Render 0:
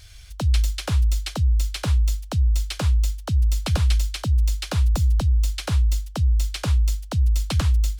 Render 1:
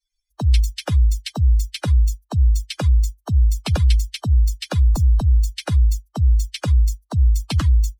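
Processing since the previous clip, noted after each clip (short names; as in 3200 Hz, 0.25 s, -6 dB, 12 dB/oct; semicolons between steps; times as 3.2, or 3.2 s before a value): per-bin expansion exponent 3; gain +6 dB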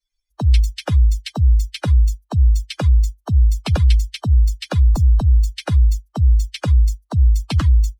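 high shelf 5300 Hz -7 dB; gain +2 dB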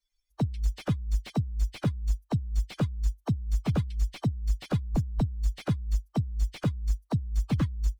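negative-ratio compressor -18 dBFS, ratio -0.5; slew limiter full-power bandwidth 67 Hz; gain -7.5 dB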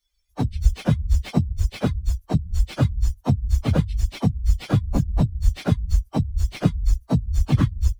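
phase scrambler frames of 50 ms; gain +7.5 dB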